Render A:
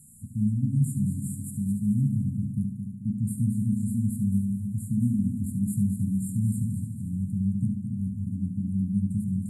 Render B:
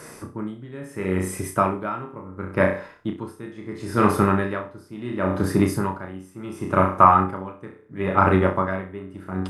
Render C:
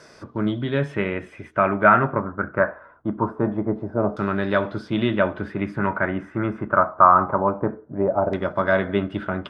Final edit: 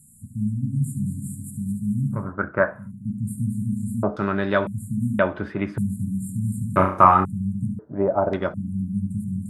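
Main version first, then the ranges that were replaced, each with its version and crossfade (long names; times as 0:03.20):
A
0:02.23–0:02.80: punch in from C, crossfade 0.24 s
0:04.03–0:04.67: punch in from C
0:05.19–0:05.78: punch in from C
0:06.76–0:07.25: punch in from B
0:07.79–0:08.54: punch in from C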